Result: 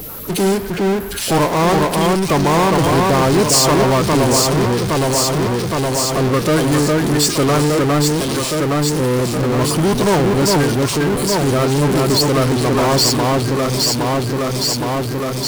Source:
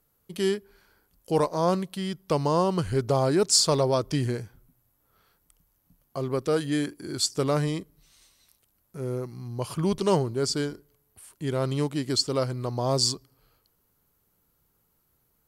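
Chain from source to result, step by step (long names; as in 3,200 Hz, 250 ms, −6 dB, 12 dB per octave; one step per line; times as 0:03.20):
spectral magnitudes quantised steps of 30 dB
delay that swaps between a low-pass and a high-pass 408 ms, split 2,200 Hz, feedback 74%, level −3 dB
power curve on the samples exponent 0.35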